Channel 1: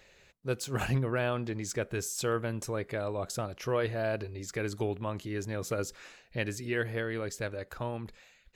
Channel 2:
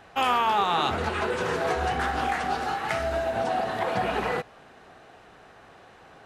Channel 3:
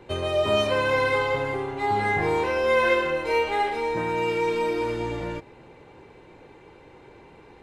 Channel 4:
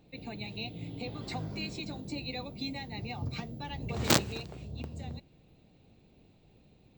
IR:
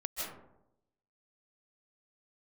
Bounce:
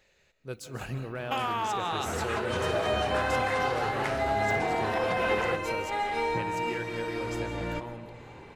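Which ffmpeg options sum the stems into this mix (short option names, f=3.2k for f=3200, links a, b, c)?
-filter_complex "[0:a]volume=-8.5dB,asplit=3[a][b][c];[b]volume=-8dB[d];[1:a]acompressor=threshold=-27dB:ratio=6,adelay=1150,volume=-0.5dB[e];[2:a]equalizer=f=400:w=1.4:g=-5,acompressor=threshold=-29dB:ratio=3,adelay=2400,volume=2dB,asplit=2[f][g];[g]volume=-13.5dB[h];[3:a]acompressor=threshold=-43dB:ratio=2,adelay=400,volume=-16.5dB[i];[c]apad=whole_len=442052[j];[f][j]sidechaincompress=threshold=-43dB:ratio=8:attack=32:release=637[k];[4:a]atrim=start_sample=2205[l];[d][h]amix=inputs=2:normalize=0[m];[m][l]afir=irnorm=-1:irlink=0[n];[a][e][k][i][n]amix=inputs=5:normalize=0"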